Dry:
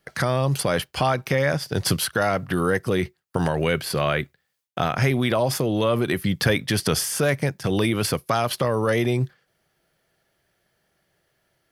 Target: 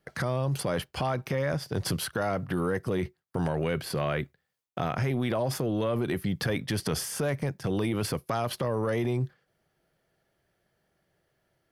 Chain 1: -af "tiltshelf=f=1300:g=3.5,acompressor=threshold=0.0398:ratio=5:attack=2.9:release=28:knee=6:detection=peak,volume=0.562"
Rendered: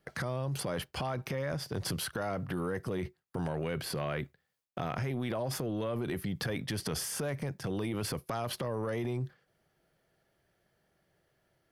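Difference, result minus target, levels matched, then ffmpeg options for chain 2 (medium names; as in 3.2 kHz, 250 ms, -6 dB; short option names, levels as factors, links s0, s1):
compression: peak gain reduction +6.5 dB
-af "tiltshelf=f=1300:g=3.5,acompressor=threshold=0.1:ratio=5:attack=2.9:release=28:knee=6:detection=peak,volume=0.562"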